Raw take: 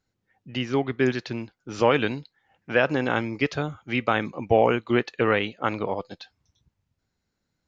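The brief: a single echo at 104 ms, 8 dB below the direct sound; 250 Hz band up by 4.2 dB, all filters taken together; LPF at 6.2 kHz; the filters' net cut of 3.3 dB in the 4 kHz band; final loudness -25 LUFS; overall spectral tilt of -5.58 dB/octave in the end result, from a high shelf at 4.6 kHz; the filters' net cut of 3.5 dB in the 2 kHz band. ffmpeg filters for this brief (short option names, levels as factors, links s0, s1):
-af "lowpass=6200,equalizer=f=250:t=o:g=5,equalizer=f=2000:t=o:g=-4.5,equalizer=f=4000:t=o:g=-4,highshelf=f=4600:g=4,aecho=1:1:104:0.398,volume=0.841"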